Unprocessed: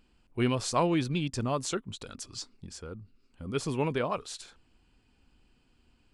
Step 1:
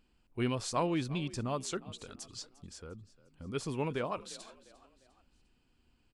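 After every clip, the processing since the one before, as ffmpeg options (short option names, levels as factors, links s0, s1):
-filter_complex "[0:a]asplit=4[s0][s1][s2][s3];[s1]adelay=351,afreqshift=44,volume=0.106[s4];[s2]adelay=702,afreqshift=88,volume=0.0468[s5];[s3]adelay=1053,afreqshift=132,volume=0.0204[s6];[s0][s4][s5][s6]amix=inputs=4:normalize=0,volume=0.562"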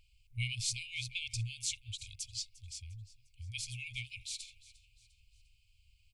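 -af "afftfilt=real='re*(1-between(b*sr/4096,120,2100))':imag='im*(1-between(b*sr/4096,120,2100))':win_size=4096:overlap=0.75,volume=1.78"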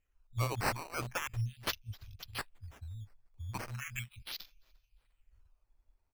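-af "afwtdn=0.00631,acrusher=samples=9:mix=1:aa=0.000001:lfo=1:lforange=9:lforate=0.38,volume=1.41"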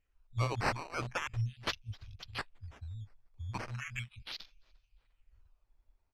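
-af "lowpass=5400,volume=1.12"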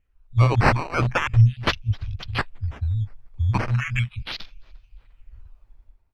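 -af "bass=f=250:g=6,treble=f=4000:g=-9,dynaudnorm=f=110:g=7:m=3.16,volume=1.58"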